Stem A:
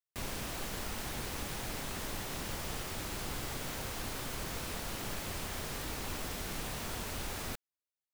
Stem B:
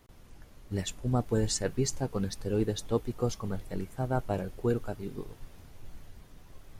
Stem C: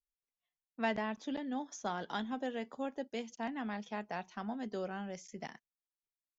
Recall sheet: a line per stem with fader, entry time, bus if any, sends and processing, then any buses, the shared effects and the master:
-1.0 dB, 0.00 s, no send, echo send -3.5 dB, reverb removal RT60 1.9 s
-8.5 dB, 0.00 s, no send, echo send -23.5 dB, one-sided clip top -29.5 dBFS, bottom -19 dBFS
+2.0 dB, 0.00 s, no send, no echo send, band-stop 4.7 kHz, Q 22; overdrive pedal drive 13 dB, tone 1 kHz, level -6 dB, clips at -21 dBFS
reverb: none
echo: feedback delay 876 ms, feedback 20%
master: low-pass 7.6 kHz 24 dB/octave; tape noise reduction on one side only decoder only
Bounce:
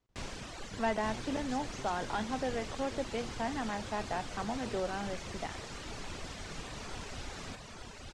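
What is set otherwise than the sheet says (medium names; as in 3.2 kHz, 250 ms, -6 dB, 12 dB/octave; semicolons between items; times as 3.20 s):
stem B -8.5 dB -> -19.5 dB; master: missing tape noise reduction on one side only decoder only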